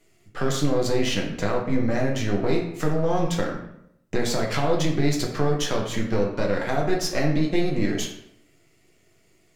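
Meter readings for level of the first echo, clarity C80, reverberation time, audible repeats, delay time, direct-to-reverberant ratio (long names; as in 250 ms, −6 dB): no echo audible, 8.5 dB, 0.75 s, no echo audible, no echo audible, −1.0 dB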